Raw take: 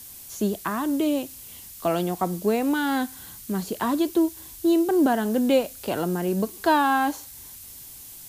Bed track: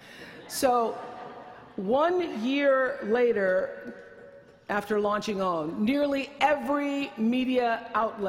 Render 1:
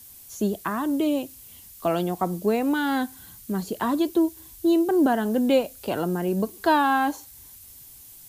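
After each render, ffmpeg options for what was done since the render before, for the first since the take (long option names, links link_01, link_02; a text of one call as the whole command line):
ffmpeg -i in.wav -af "afftdn=noise_reduction=6:noise_floor=-43" out.wav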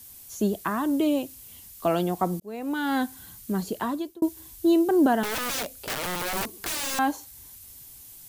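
ffmpeg -i in.wav -filter_complex "[0:a]asettb=1/sr,asplit=3[link_01][link_02][link_03];[link_01]atrim=end=5.234[link_04];[link_02]atrim=start=5.23:end=6.99,asetpts=PTS-STARTPTS,afade=type=in:duration=0.004:curve=qsin,afade=type=out:start_time=1.756:duration=0.004:curve=qsin,aeval=exprs='(mod(16.8*val(0)+1,2)-1)/16.8':channel_layout=same[link_05];[link_03]atrim=start=6.986[link_06];[link_04][link_05]acrossfade=duration=0.004:curve1=hsin:curve2=qsin[link_07];[link_07][link_06]acrossfade=duration=0.004:curve1=qsin:curve2=hsin,asplit=3[link_08][link_09][link_10];[link_08]atrim=end=2.4,asetpts=PTS-STARTPTS,afade=type=out:start_time=2.396:duration=0.004:curve=hsin[link_11];[link_09]atrim=start=2.4:end=4.22,asetpts=PTS-STARTPTS,afade=type=in:duration=0.6,afade=type=out:start_time=1.28:duration=0.54[link_12];[link_10]atrim=start=4.22,asetpts=PTS-STARTPTS,afade=type=in:duration=0.004:curve=hsin[link_13];[link_11][link_12][link_13]concat=n=3:v=0:a=1" out.wav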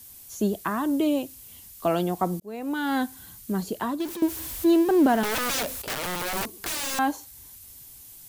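ffmpeg -i in.wav -filter_complex "[0:a]asettb=1/sr,asplit=3[link_01][link_02][link_03];[link_01]atrim=end=4.004[link_04];[link_02]atrim=start=4:end=5.82,asetpts=PTS-STARTPTS,afade=type=in:duration=0.004:curve=qsin,afade=type=out:start_time=1.816:duration=0.004:curve=qsin,aeval=exprs='val(0)+0.5*0.0266*sgn(val(0))':channel_layout=same[link_05];[link_03]atrim=start=5.816[link_06];[link_04][link_05]acrossfade=duration=0.004:curve1=hsin:curve2=qsin[link_07];[link_07][link_06]acrossfade=duration=0.004:curve1=qsin:curve2=hsin" out.wav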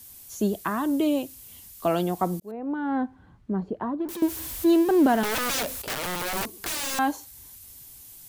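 ffmpeg -i in.wav -filter_complex "[0:a]asettb=1/sr,asplit=3[link_01][link_02][link_03];[link_01]atrim=end=2.514[link_04];[link_02]atrim=start=2.51:end=4.09,asetpts=PTS-STARTPTS,afade=type=in:duration=0.004:curve=qsin,afade=type=out:start_time=1.576:duration=0.004:curve=qsin,lowpass=1100[link_05];[link_03]atrim=start=4.086[link_06];[link_04][link_05]acrossfade=duration=0.004:curve1=hsin:curve2=qsin[link_07];[link_07][link_06]acrossfade=duration=0.004:curve1=qsin:curve2=hsin" out.wav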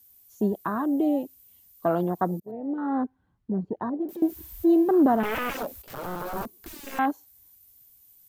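ffmpeg -i in.wav -af "afwtdn=0.0398,equalizer=frequency=14000:width=3.6:gain=13" out.wav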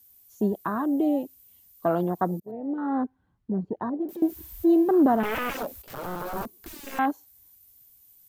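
ffmpeg -i in.wav -af anull out.wav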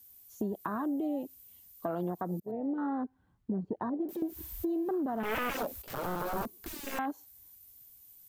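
ffmpeg -i in.wav -af "alimiter=limit=-20dB:level=0:latency=1:release=160,acompressor=threshold=-30dB:ratio=6" out.wav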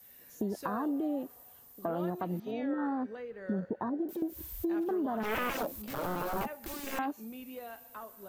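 ffmpeg -i in.wav -i bed.wav -filter_complex "[1:a]volume=-19.5dB[link_01];[0:a][link_01]amix=inputs=2:normalize=0" out.wav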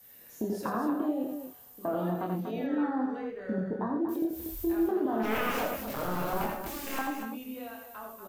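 ffmpeg -i in.wav -filter_complex "[0:a]asplit=2[link_01][link_02];[link_02]adelay=27,volume=-4.5dB[link_03];[link_01][link_03]amix=inputs=2:normalize=0,aecho=1:1:84.55|239.1:0.562|0.398" out.wav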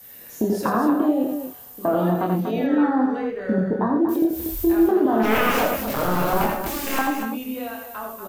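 ffmpeg -i in.wav -af "volume=10.5dB" out.wav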